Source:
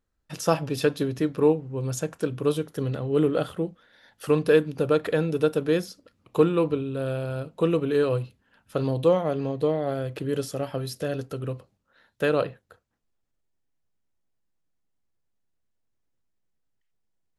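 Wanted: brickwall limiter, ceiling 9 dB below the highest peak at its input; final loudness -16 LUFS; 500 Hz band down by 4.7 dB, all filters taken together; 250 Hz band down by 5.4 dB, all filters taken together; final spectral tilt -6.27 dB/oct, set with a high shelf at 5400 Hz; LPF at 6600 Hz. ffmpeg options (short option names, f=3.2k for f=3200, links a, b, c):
-af "lowpass=6.6k,equalizer=f=250:t=o:g=-6.5,equalizer=f=500:t=o:g=-3.5,highshelf=f=5.4k:g=-7.5,volume=16dB,alimiter=limit=-4dB:level=0:latency=1"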